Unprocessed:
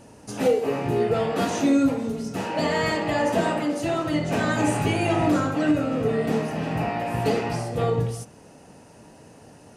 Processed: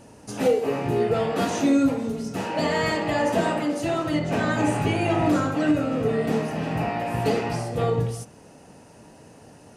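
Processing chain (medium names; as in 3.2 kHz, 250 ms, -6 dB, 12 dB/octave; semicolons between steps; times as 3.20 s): 4.19–5.26 s: treble shelf 5.2 kHz -6 dB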